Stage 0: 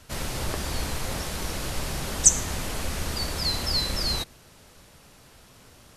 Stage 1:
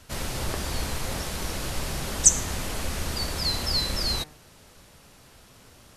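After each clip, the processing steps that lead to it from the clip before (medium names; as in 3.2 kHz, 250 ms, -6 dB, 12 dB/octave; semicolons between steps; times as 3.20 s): de-hum 151.4 Hz, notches 17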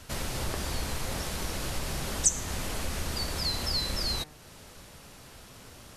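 compression 1.5:1, threshold -42 dBFS, peak gain reduction 11 dB; trim +3 dB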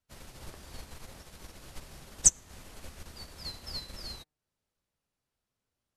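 upward expansion 2.5:1, over -47 dBFS; trim +4 dB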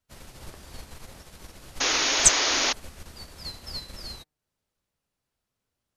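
painted sound noise, 1.80–2.73 s, 240–6900 Hz -27 dBFS; trim +3 dB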